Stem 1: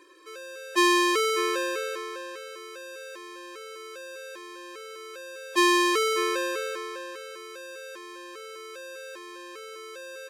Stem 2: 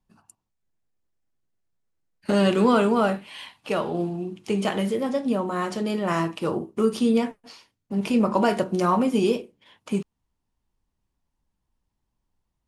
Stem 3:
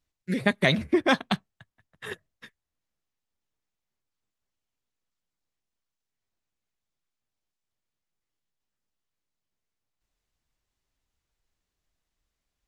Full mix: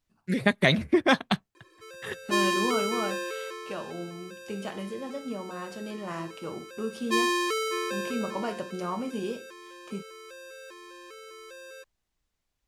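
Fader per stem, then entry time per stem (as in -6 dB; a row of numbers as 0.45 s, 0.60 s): -4.5 dB, -11.5 dB, +0.5 dB; 1.55 s, 0.00 s, 0.00 s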